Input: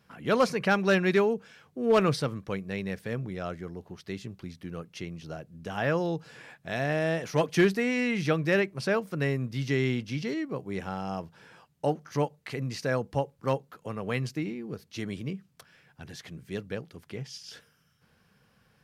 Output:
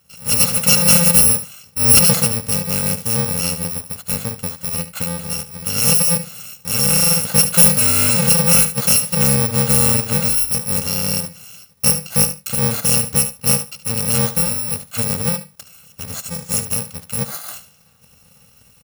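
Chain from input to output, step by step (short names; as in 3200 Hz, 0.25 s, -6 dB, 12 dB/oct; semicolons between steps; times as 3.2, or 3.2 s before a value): FFT order left unsorted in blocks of 128 samples; feedback echo 73 ms, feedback 15%, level -13.5 dB; AGC gain up to 7.5 dB; 16.12–16.64 bell 7100 Hz +7.5 dB -> +14 dB 0.53 oct; in parallel at -1.5 dB: limiter -16 dBFS, peak gain reduction 10 dB; on the sum: dynamic EQ 360 Hz, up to +7 dB, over -40 dBFS, Q 1.1; gain +1.5 dB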